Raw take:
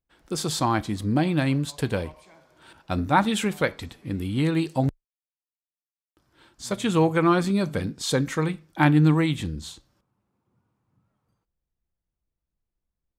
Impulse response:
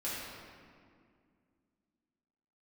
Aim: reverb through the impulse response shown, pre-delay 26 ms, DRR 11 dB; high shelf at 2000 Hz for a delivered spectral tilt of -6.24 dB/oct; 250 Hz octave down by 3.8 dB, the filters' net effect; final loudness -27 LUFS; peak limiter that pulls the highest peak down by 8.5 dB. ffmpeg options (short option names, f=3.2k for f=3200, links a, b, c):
-filter_complex "[0:a]equalizer=f=250:t=o:g=-5.5,highshelf=f=2k:g=-7.5,alimiter=limit=-16.5dB:level=0:latency=1,asplit=2[a][b];[1:a]atrim=start_sample=2205,adelay=26[c];[b][c]afir=irnorm=-1:irlink=0,volume=-15dB[d];[a][d]amix=inputs=2:normalize=0,volume=1.5dB"